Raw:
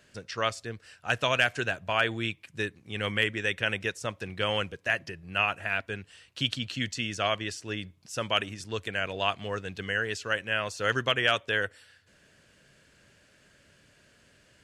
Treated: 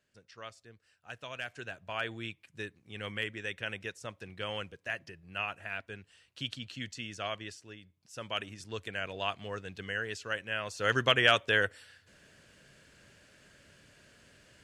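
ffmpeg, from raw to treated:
ffmpeg -i in.wav -af "volume=9.5dB,afade=type=in:start_time=1.29:duration=0.78:silence=0.375837,afade=type=out:start_time=7.47:duration=0.33:silence=0.375837,afade=type=in:start_time=7.8:duration=0.85:silence=0.266073,afade=type=in:start_time=10.64:duration=0.45:silence=0.446684" out.wav

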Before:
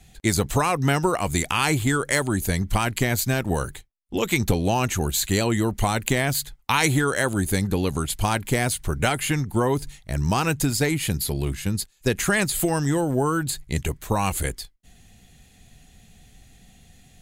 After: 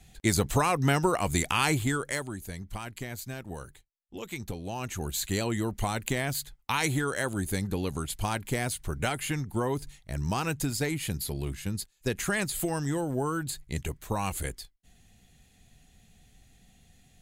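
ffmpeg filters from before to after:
ffmpeg -i in.wav -af "volume=4.5dB,afade=type=out:start_time=1.62:duration=0.76:silence=0.251189,afade=type=in:start_time=4.65:duration=0.58:silence=0.398107" out.wav

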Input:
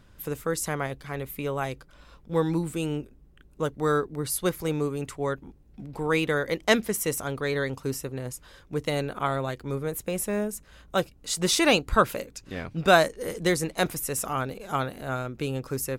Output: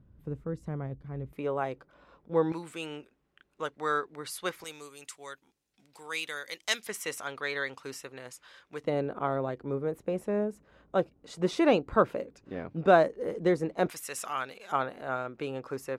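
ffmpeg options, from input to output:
ffmpeg -i in.wav -af "asetnsamples=nb_out_samples=441:pad=0,asendcmd='1.33 bandpass f 590;2.52 bandpass f 1900;4.64 bandpass f 6300;6.87 bandpass f 2100;8.84 bandpass f 420;13.89 bandpass f 2400;14.72 bandpass f 910',bandpass=frequency=110:width_type=q:width=0.61:csg=0" out.wav

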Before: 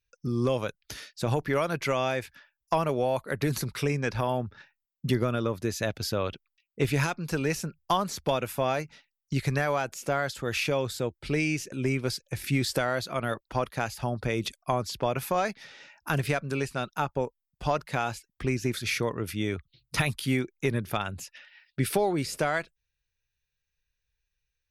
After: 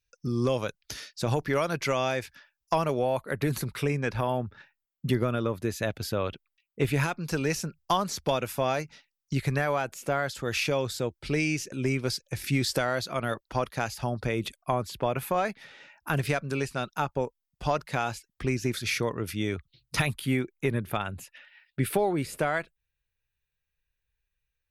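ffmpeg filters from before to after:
ffmpeg -i in.wav -af "asetnsamples=nb_out_samples=441:pad=0,asendcmd='2.99 equalizer g -5.5;7.19 equalizer g 3;9.35 equalizer g -4.5;10.31 equalizer g 2.5;14.29 equalizer g -7.5;16.18 equalizer g 1;20.06 equalizer g -10',equalizer=frequency=5500:width_type=o:width=0.82:gain=4" out.wav

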